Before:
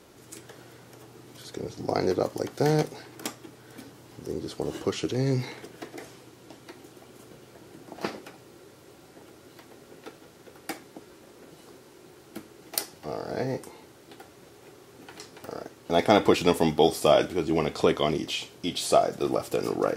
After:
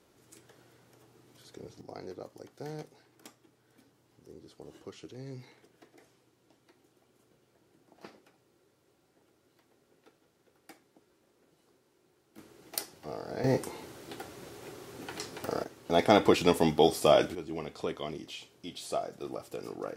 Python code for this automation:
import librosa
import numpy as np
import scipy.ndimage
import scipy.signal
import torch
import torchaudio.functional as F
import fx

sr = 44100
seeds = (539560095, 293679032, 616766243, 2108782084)

y = fx.gain(x, sr, db=fx.steps((0.0, -11.5), (1.81, -18.0), (12.38, -6.0), (13.44, 4.0), (15.64, -2.5), (17.35, -12.5)))